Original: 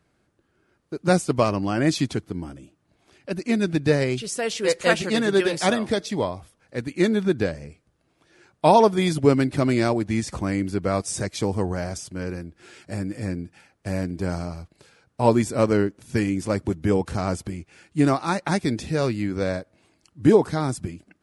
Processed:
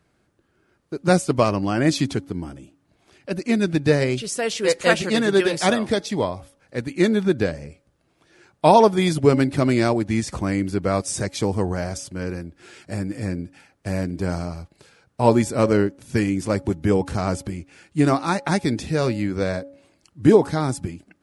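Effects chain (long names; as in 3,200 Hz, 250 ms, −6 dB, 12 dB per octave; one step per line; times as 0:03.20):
hum removal 279.3 Hz, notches 3
level +2 dB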